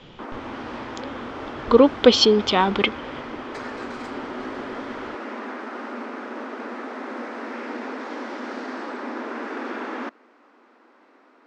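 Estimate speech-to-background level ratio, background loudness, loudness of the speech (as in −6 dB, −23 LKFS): 16.0 dB, −33.5 LKFS, −17.5 LKFS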